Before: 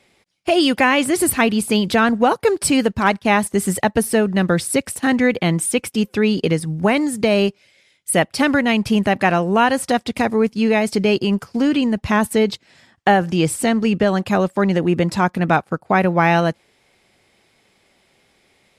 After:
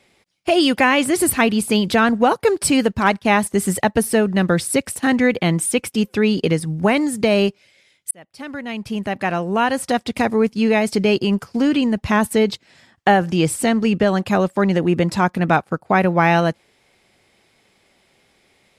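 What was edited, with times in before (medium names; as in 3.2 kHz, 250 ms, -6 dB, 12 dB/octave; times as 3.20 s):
8.11–10.22 s: fade in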